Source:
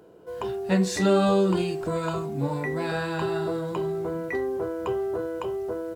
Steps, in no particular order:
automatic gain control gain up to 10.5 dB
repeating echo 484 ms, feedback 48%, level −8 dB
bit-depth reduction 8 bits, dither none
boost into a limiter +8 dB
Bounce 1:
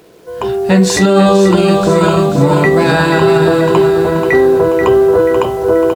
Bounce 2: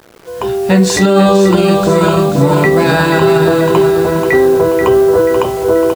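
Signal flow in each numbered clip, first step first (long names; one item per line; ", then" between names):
repeating echo, then automatic gain control, then boost into a limiter, then bit-depth reduction
repeating echo, then bit-depth reduction, then automatic gain control, then boost into a limiter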